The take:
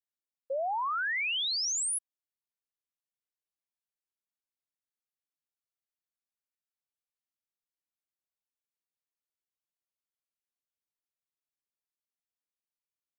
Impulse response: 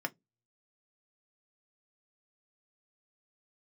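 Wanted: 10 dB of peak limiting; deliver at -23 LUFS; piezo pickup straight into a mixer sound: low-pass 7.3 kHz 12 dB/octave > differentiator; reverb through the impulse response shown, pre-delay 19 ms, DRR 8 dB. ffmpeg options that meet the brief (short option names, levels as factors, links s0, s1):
-filter_complex "[0:a]alimiter=level_in=5.01:limit=0.0631:level=0:latency=1,volume=0.2,asplit=2[s0][s1];[1:a]atrim=start_sample=2205,adelay=19[s2];[s1][s2]afir=irnorm=-1:irlink=0,volume=0.266[s3];[s0][s3]amix=inputs=2:normalize=0,lowpass=7300,aderivative,volume=11.9"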